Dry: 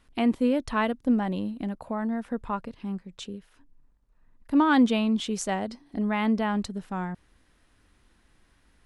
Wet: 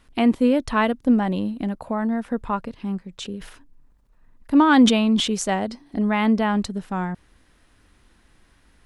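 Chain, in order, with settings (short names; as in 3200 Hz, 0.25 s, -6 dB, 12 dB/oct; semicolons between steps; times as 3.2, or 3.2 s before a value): 3.15–5.28 sustainer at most 80 dB/s; gain +5.5 dB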